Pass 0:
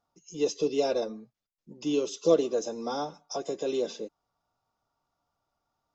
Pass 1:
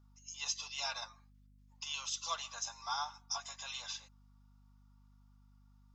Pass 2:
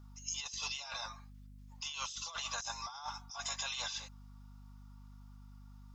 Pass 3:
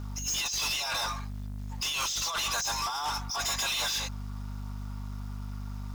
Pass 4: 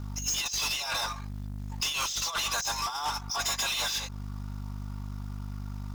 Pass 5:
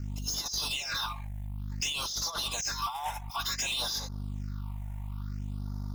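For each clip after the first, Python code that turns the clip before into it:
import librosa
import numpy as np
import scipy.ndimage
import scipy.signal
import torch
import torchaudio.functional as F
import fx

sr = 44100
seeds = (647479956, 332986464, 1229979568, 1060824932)

y1 = scipy.signal.sosfilt(scipy.signal.butter(8, 880.0, 'highpass', fs=sr, output='sos'), x)
y1 = fx.add_hum(y1, sr, base_hz=50, snr_db=19)
y1 = y1 * librosa.db_to_amplitude(1.5)
y2 = fx.over_compress(y1, sr, threshold_db=-47.0, ratio=-1.0)
y2 = y2 * librosa.db_to_amplitude(5.0)
y3 = fx.leveller(y2, sr, passes=5)
y3 = y3 * librosa.db_to_amplitude(-1.5)
y4 = fx.transient(y3, sr, attack_db=5, sustain_db=-11)
y5 = fx.phaser_stages(y4, sr, stages=6, low_hz=330.0, high_hz=2600.0, hz=0.56, feedback_pct=25)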